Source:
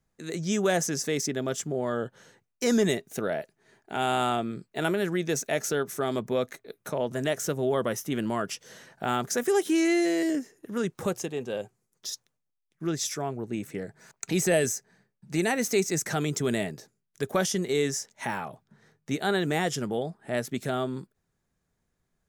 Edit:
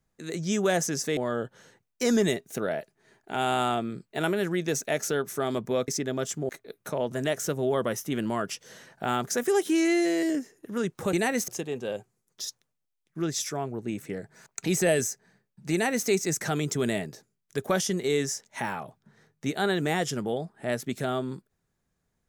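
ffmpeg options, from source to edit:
-filter_complex "[0:a]asplit=6[a][b][c][d][e][f];[a]atrim=end=1.172[g];[b]atrim=start=1.778:end=6.492[h];[c]atrim=start=1.168:end=1.782[i];[d]atrim=start=6.488:end=11.132[j];[e]atrim=start=15.368:end=15.722[k];[f]atrim=start=11.128[l];[g][h]acrossfade=d=0.004:c1=hsin:c2=hsin[m];[m][i]acrossfade=d=0.004:c1=hsin:c2=hsin[n];[n][j]acrossfade=d=0.004:c1=hsin:c2=hsin[o];[o][k]acrossfade=d=0.004:c1=hsin:c2=hsin[p];[p][l]acrossfade=d=0.004:c1=hsin:c2=hsin"

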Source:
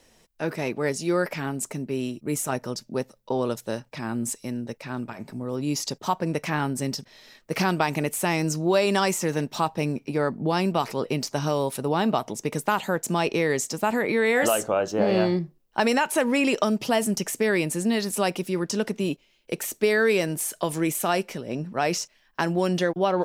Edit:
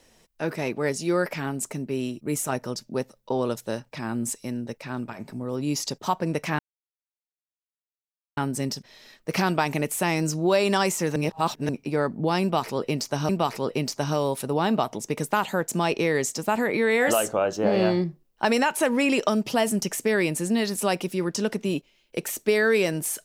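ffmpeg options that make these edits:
-filter_complex "[0:a]asplit=5[a][b][c][d][e];[a]atrim=end=6.59,asetpts=PTS-STARTPTS,afade=t=out:st=6.586:d=0.004:c=hsin,apad=pad_dur=1.78[f];[b]atrim=start=6.59:end=9.382,asetpts=PTS-STARTPTS,afade=t=in:d=0.004:c=hsin[g];[c]atrim=start=9.378:end=9.912,asetpts=PTS-STARTPTS,areverse[h];[d]atrim=start=9.908:end=11.512[i];[e]atrim=start=10.638[j];[f][g]concat=n=2:v=0:a=1[k];[k][h]acrossfade=d=0.004:c1=hsin:c2=hsin[l];[l][i]acrossfade=d=0.004:c1=hsin:c2=hsin[m];[m][j]acrossfade=d=0.004:c1=hsin:c2=hsin"

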